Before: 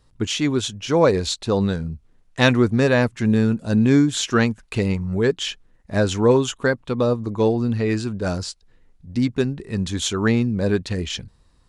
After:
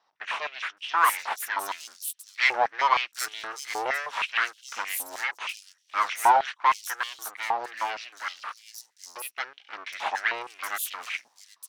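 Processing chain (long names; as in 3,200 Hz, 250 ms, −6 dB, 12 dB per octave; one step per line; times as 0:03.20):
0:08.31–0:09.31: downward compressor, threshold −23 dBFS, peak gain reduction 7.5 dB
parametric band 5,700 Hz +14 dB 0.22 octaves
full-wave rectification
multiband delay without the direct sound lows, highs 770 ms, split 4,800 Hz
high-pass on a step sequencer 6.4 Hz 830–3,100 Hz
level −4.5 dB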